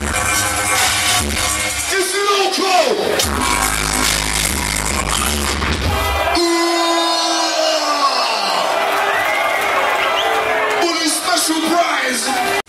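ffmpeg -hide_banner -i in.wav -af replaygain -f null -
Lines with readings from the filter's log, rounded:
track_gain = -2.5 dB
track_peak = 0.616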